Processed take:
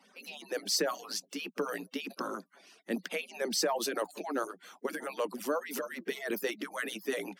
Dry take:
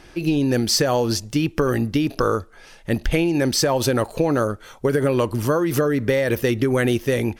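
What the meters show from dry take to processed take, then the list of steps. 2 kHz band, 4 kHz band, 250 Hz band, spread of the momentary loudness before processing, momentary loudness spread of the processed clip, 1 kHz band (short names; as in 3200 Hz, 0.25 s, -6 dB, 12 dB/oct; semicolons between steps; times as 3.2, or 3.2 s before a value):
-10.0 dB, -10.0 dB, -18.5 dB, 4 LU, 10 LU, -11.5 dB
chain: median-filter separation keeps percussive; steep high-pass 180 Hz 96 dB/oct; transient shaper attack -2 dB, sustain +3 dB; gain -9 dB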